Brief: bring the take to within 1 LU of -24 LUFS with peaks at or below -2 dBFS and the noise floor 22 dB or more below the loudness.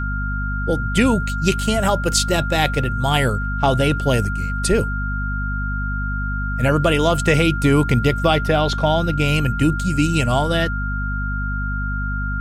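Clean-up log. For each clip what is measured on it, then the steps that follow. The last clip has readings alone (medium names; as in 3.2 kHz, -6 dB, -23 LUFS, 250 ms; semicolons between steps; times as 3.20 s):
hum 50 Hz; highest harmonic 250 Hz; hum level -21 dBFS; steady tone 1.4 kHz; tone level -26 dBFS; loudness -19.5 LUFS; peak level -1.5 dBFS; loudness target -24.0 LUFS
-> hum notches 50/100/150/200/250 Hz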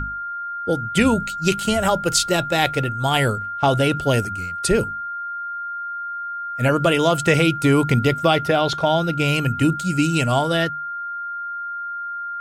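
hum not found; steady tone 1.4 kHz; tone level -26 dBFS
-> band-stop 1.4 kHz, Q 30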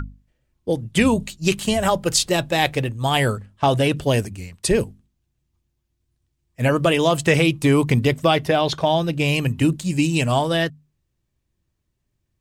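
steady tone not found; loudness -20.0 LUFS; peak level -2.5 dBFS; loudness target -24.0 LUFS
-> trim -4 dB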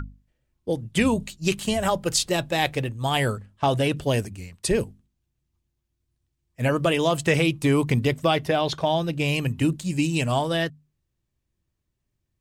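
loudness -24.0 LUFS; peak level -6.5 dBFS; noise floor -78 dBFS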